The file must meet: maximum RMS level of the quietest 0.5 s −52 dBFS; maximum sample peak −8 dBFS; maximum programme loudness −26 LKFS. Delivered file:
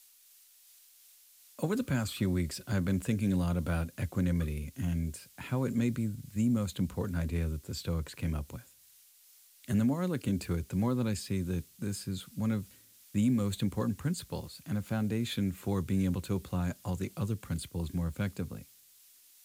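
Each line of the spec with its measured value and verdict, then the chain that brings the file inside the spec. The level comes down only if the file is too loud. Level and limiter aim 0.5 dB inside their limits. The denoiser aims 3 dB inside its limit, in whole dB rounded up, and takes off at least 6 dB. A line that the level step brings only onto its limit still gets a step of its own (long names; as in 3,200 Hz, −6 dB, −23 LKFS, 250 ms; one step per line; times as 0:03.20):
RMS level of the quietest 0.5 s −61 dBFS: in spec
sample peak −18.0 dBFS: in spec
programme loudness −33.5 LKFS: in spec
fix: no processing needed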